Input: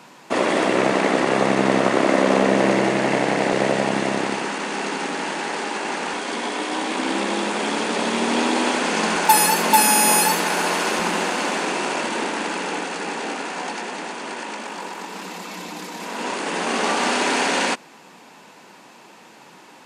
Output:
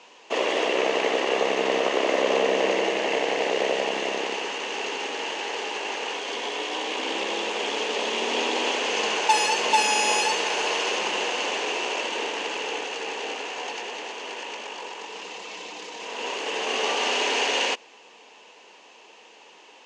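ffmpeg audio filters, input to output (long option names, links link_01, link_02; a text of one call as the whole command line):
ffmpeg -i in.wav -af "highpass=430,equalizer=frequency=450:width_type=q:width=4:gain=8,equalizer=frequency=1400:width_type=q:width=4:gain=-7,equalizer=frequency=2900:width_type=q:width=4:gain=10,equalizer=frequency=6400:width_type=q:width=4:gain=5,lowpass=frequency=6800:width=0.5412,lowpass=frequency=6800:width=1.3066,volume=-5dB" out.wav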